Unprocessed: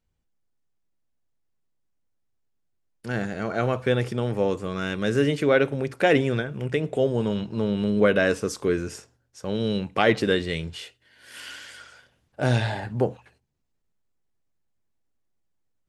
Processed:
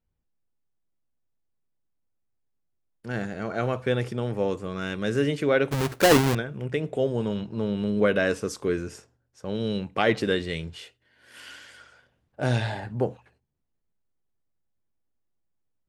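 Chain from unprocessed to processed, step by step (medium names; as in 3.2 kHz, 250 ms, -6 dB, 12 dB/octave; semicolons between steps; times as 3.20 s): 5.71–6.35 s: square wave that keeps the level; tape noise reduction on one side only decoder only; trim -2.5 dB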